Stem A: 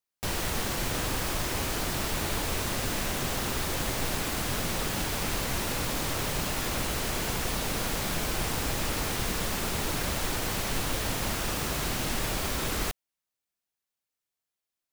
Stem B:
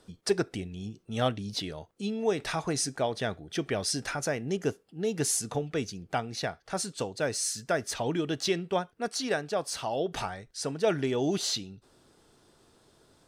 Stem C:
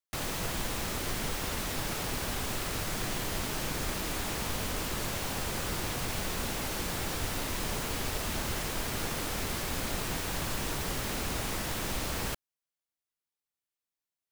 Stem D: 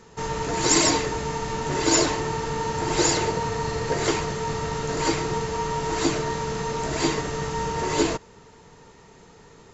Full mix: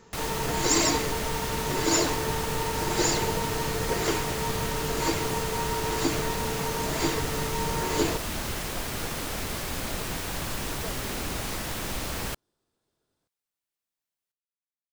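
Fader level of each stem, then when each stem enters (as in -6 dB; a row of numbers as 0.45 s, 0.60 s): mute, -18.5 dB, +1.5 dB, -4.0 dB; mute, 0.00 s, 0.00 s, 0.00 s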